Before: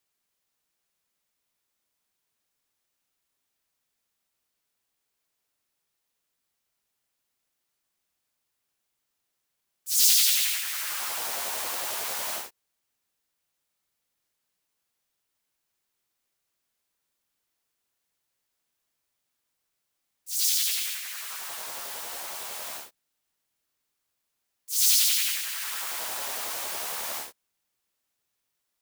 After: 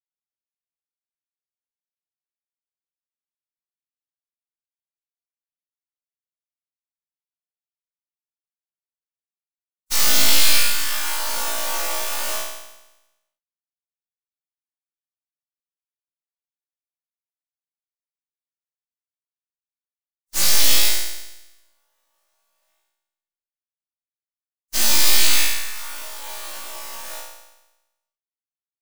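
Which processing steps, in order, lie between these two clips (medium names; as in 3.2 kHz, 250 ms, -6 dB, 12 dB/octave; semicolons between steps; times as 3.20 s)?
tracing distortion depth 0.13 ms; gate -31 dBFS, range -47 dB; comb 3.4 ms, depth 48%; peak limiter -18.5 dBFS, peak gain reduction 11 dB; flutter echo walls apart 3 m, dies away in 1 s; trim +5 dB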